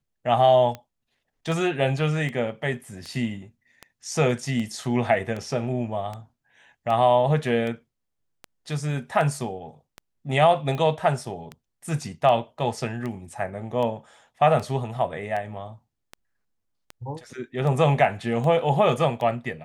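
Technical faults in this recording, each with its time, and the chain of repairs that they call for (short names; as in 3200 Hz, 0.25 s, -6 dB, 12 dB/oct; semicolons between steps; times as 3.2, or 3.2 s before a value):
tick 78 rpm -20 dBFS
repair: de-click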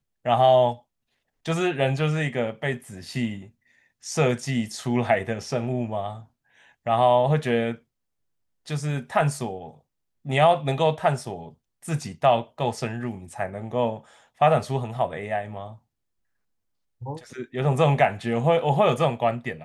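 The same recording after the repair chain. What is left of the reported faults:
none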